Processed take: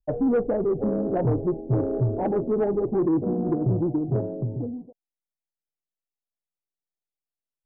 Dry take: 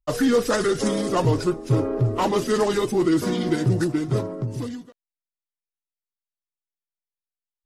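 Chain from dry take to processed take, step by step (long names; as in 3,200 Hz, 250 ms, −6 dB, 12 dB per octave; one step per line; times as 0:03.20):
Butterworth low-pass 820 Hz 72 dB per octave
soft clipping −16 dBFS, distortion −17 dB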